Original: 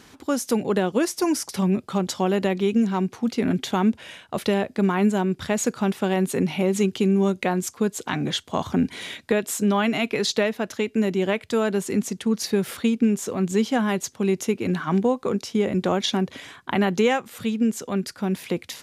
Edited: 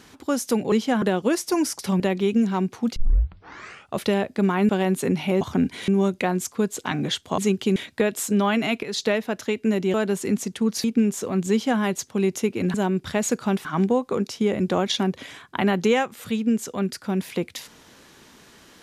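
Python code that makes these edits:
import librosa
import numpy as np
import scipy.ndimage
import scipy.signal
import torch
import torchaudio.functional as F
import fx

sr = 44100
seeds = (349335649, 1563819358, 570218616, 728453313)

y = fx.edit(x, sr, fx.cut(start_s=1.7, length_s=0.7),
    fx.tape_start(start_s=3.36, length_s=1.02),
    fx.move(start_s=5.09, length_s=0.91, to_s=14.79),
    fx.swap(start_s=6.72, length_s=0.38, other_s=8.6, other_length_s=0.47),
    fx.fade_in_from(start_s=10.14, length_s=0.35, curve='qsin', floor_db=-13.0),
    fx.cut(start_s=11.25, length_s=0.34),
    fx.cut(start_s=12.49, length_s=0.4),
    fx.duplicate(start_s=13.56, length_s=0.3, to_s=0.72), tone=tone)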